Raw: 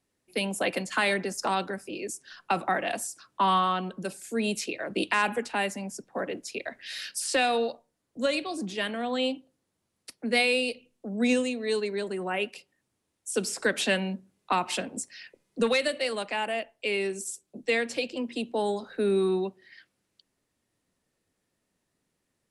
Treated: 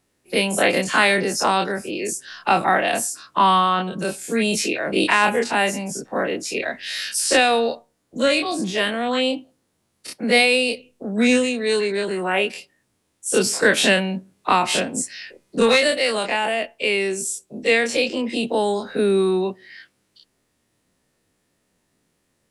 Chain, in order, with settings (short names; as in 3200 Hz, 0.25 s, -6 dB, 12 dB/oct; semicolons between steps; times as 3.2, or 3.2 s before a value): spectral dilation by 60 ms; gain +5.5 dB